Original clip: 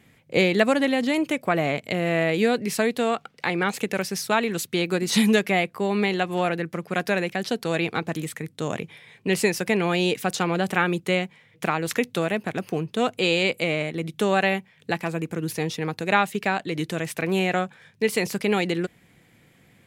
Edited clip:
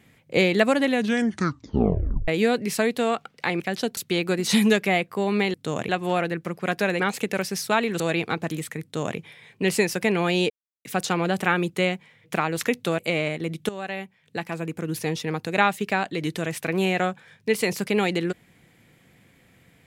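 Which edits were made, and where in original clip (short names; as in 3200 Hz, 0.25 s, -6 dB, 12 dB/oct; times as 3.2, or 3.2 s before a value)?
0.88 tape stop 1.40 s
3.6–4.6 swap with 7.28–7.65
8.48–8.83 copy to 6.17
10.15 insert silence 0.35 s
12.29–13.53 cut
14.23–15.54 fade in, from -15.5 dB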